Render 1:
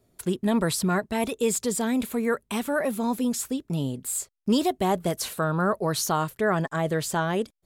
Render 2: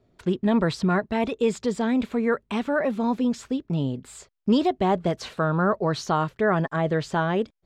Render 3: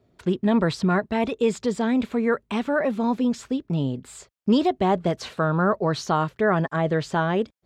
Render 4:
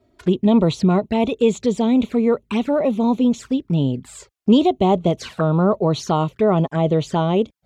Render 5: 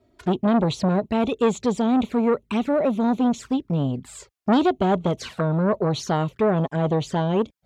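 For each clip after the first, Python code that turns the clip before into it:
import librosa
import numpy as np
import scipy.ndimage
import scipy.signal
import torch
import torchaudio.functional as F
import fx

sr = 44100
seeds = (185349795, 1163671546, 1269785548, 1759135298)

y1 = fx.air_absorb(x, sr, metres=170.0)
y1 = y1 * 10.0 ** (2.5 / 20.0)
y2 = scipy.signal.sosfilt(scipy.signal.butter(2, 41.0, 'highpass', fs=sr, output='sos'), y1)
y2 = y2 * 10.0 ** (1.0 / 20.0)
y3 = fx.env_flanger(y2, sr, rest_ms=3.2, full_db=-21.0)
y3 = y3 * 10.0 ** (6.0 / 20.0)
y4 = fx.transformer_sat(y3, sr, knee_hz=650.0)
y4 = y4 * 10.0 ** (-1.5 / 20.0)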